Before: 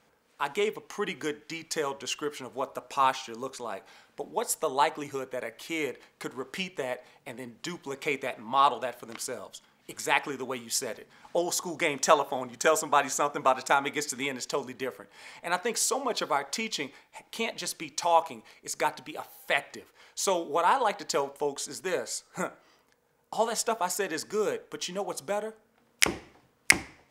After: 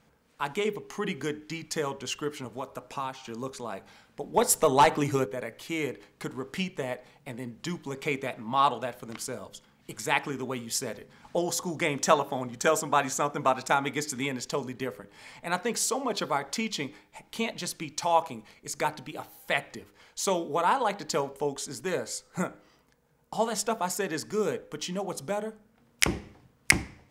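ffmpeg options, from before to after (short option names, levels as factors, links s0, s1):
-filter_complex "[0:a]asettb=1/sr,asplit=3[s0][s1][s2];[s0]atrim=end=2.454[s3];[s1]atrim=start=2.45:end=3.25,asetpts=PTS-STARTPTS,afade=t=in:d=0.004:c=qsin,afade=t=out:st=0.796:d=0.004:c=qsin,acrossover=split=770|2600[s4][s5][s6];[s4]acompressor=threshold=0.0141:ratio=4[s7];[s5]acompressor=threshold=0.0158:ratio=4[s8];[s6]acompressor=threshold=0.00398:ratio=4[s9];[s7][s8][s9]amix=inputs=3:normalize=0[s10];[s2]atrim=start=3.246[s11];[s3][s10]acrossfade=d=0.004:c1=hsin:c2=qsin[s12];[s12][s11]acrossfade=d=0.004:c1=qsin:c2=hsin,asettb=1/sr,asplit=3[s13][s14][s15];[s13]atrim=end=4.344[s16];[s14]atrim=start=4.34:end=5.26,asetpts=PTS-STARTPTS,afade=t=in:d=0.004:c=qsin,afade=t=out:st=0.916:d=0.004:c=qsin,aeval=exprs='0.299*sin(PI/2*1.58*val(0)/0.299)':c=same[s17];[s15]atrim=start=5.256[s18];[s16][s17]acrossfade=d=0.004:c1=hsin:c2=qsin[s19];[s19][s18]acrossfade=d=0.004:c1=qsin:c2=hsin,bass=f=250:g=11,treble=f=4000:g=0,bandreject=f=101.8:t=h:w=4,bandreject=f=203.6:t=h:w=4,bandreject=f=305.4:t=h:w=4,bandreject=f=407.2:t=h:w=4,bandreject=f=509:t=h:w=4,volume=0.891"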